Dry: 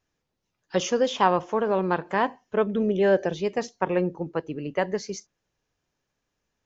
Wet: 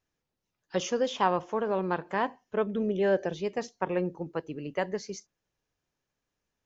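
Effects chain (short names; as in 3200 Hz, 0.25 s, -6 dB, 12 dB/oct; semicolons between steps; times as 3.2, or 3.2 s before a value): 4.05–4.89 high shelf 4900 Hz +6 dB; gain -5 dB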